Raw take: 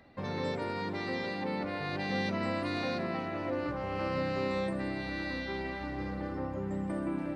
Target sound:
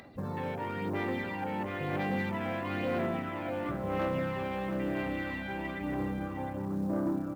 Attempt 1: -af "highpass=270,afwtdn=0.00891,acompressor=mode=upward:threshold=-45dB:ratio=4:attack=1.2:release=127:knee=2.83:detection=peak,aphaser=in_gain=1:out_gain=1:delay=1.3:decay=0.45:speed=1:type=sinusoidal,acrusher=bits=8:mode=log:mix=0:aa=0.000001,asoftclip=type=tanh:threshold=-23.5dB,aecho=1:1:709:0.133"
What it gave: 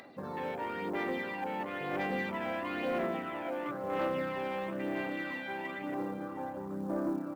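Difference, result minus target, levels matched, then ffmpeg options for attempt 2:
125 Hz band −7.5 dB; echo-to-direct −8 dB
-af "highpass=81,afwtdn=0.00891,acompressor=mode=upward:threshold=-45dB:ratio=4:attack=1.2:release=127:knee=2.83:detection=peak,aphaser=in_gain=1:out_gain=1:delay=1.3:decay=0.45:speed=1:type=sinusoidal,acrusher=bits=8:mode=log:mix=0:aa=0.000001,asoftclip=type=tanh:threshold=-23.5dB,aecho=1:1:709:0.335"

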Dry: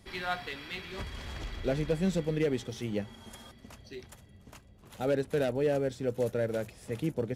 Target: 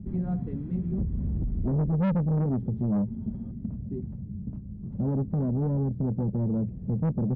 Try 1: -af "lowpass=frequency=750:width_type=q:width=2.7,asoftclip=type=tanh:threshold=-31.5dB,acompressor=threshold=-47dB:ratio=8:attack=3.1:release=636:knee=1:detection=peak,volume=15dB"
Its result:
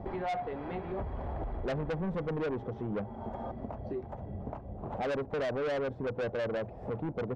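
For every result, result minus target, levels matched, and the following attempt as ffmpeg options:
1,000 Hz band +12.5 dB; downward compressor: peak gain reduction +8 dB
-af "lowpass=frequency=190:width_type=q:width=2.7,asoftclip=type=tanh:threshold=-31.5dB,acompressor=threshold=-47dB:ratio=8:attack=3.1:release=636:knee=1:detection=peak,volume=15dB"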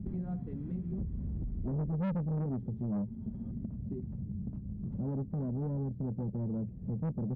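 downward compressor: peak gain reduction +8 dB
-af "lowpass=frequency=190:width_type=q:width=2.7,asoftclip=type=tanh:threshold=-31.5dB,acompressor=threshold=-38dB:ratio=8:attack=3.1:release=636:knee=1:detection=peak,volume=15dB"

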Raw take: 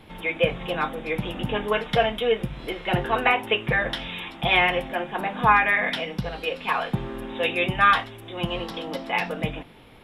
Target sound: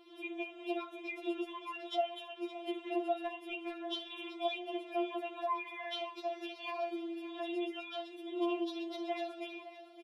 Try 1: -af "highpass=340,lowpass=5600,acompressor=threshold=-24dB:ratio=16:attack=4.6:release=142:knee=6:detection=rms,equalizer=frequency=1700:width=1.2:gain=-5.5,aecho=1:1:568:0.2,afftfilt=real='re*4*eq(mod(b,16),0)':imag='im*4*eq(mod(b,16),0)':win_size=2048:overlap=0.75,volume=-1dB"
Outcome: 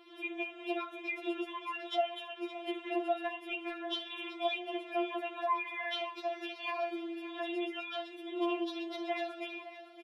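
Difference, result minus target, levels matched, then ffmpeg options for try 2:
2,000 Hz band +3.0 dB
-af "highpass=340,lowpass=5600,acompressor=threshold=-24dB:ratio=16:attack=4.6:release=142:knee=6:detection=rms,equalizer=frequency=1700:width=1.2:gain=-14.5,aecho=1:1:568:0.2,afftfilt=real='re*4*eq(mod(b,16),0)':imag='im*4*eq(mod(b,16),0)':win_size=2048:overlap=0.75,volume=-1dB"

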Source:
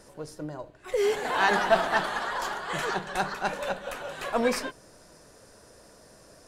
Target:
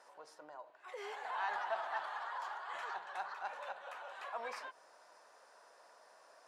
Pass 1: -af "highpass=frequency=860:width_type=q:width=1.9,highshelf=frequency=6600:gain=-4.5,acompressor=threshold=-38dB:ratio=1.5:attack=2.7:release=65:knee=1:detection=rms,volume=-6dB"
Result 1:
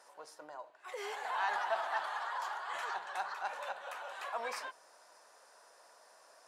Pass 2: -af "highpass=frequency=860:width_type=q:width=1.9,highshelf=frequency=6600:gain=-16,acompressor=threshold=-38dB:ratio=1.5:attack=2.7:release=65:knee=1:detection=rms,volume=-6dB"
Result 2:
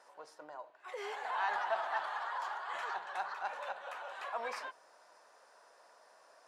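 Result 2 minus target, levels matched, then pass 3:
downward compressor: peak gain reduction −3.5 dB
-af "highpass=frequency=860:width_type=q:width=1.9,highshelf=frequency=6600:gain=-16,acompressor=threshold=-49dB:ratio=1.5:attack=2.7:release=65:knee=1:detection=rms,volume=-6dB"

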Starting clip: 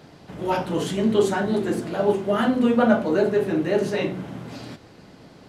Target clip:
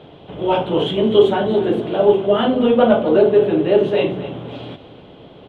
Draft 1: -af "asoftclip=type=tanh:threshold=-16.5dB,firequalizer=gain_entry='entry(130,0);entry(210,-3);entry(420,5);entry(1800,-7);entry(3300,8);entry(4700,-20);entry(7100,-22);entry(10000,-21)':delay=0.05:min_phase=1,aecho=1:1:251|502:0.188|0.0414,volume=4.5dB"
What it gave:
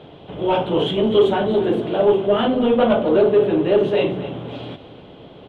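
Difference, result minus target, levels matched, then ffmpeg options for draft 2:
soft clipping: distortion +10 dB
-af "asoftclip=type=tanh:threshold=-9dB,firequalizer=gain_entry='entry(130,0);entry(210,-3);entry(420,5);entry(1800,-7);entry(3300,8);entry(4700,-20);entry(7100,-22);entry(10000,-21)':delay=0.05:min_phase=1,aecho=1:1:251|502:0.188|0.0414,volume=4.5dB"

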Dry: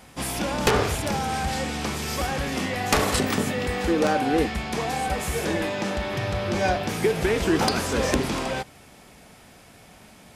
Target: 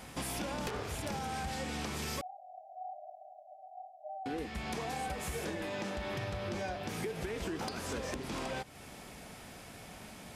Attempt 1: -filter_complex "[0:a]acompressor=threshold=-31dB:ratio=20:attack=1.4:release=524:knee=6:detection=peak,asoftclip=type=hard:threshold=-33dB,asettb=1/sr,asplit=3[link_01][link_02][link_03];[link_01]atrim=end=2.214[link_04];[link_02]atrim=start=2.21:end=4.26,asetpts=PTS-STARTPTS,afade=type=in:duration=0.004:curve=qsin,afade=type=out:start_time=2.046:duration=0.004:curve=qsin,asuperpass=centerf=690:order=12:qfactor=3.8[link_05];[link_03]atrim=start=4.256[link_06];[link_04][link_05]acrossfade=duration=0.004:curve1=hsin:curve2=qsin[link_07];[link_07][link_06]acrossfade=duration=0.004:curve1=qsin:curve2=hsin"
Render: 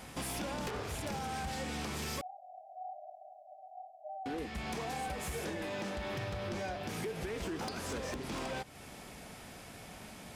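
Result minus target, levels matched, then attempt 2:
hard clipping: distortion +26 dB
-filter_complex "[0:a]acompressor=threshold=-31dB:ratio=20:attack=1.4:release=524:knee=6:detection=peak,asoftclip=type=hard:threshold=-26.5dB,asettb=1/sr,asplit=3[link_01][link_02][link_03];[link_01]atrim=end=2.214[link_04];[link_02]atrim=start=2.21:end=4.26,asetpts=PTS-STARTPTS,afade=type=in:duration=0.004:curve=qsin,afade=type=out:start_time=2.046:duration=0.004:curve=qsin,asuperpass=centerf=690:order=12:qfactor=3.8[link_05];[link_03]atrim=start=4.256[link_06];[link_04][link_05]acrossfade=duration=0.004:curve1=hsin:curve2=qsin[link_07];[link_07][link_06]acrossfade=duration=0.004:curve1=qsin:curve2=hsin"

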